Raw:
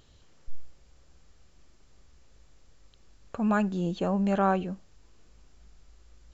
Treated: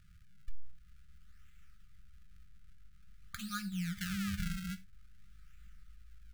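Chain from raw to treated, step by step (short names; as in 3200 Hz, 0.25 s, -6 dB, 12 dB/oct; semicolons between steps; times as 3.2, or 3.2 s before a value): compressor 10:1, threshold -30 dBFS, peak gain reduction 11.5 dB; decimation with a swept rate 42×, swing 160% 0.49 Hz; brick-wall FIR band-stop 200–1200 Hz; non-linear reverb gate 0.12 s falling, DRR 10 dB; gain -1 dB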